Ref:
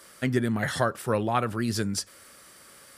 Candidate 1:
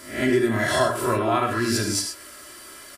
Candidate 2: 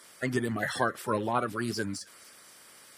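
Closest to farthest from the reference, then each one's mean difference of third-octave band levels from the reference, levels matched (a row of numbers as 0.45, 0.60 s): 2, 1; 3.0, 6.0 dB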